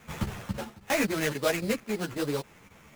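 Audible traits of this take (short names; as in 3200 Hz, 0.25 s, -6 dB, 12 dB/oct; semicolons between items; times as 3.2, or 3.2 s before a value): chopped level 3.7 Hz, depth 65%, duty 90%; aliases and images of a low sample rate 4500 Hz, jitter 20%; a shimmering, thickened sound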